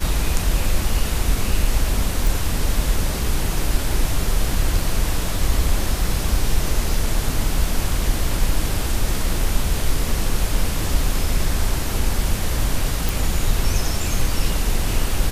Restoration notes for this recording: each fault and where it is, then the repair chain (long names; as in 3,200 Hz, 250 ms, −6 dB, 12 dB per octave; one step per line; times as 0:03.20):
0:02.27: click
0:13.09: click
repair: click removal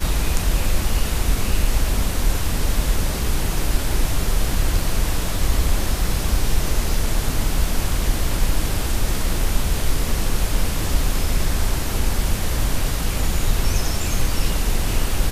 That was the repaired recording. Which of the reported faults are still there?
none of them is left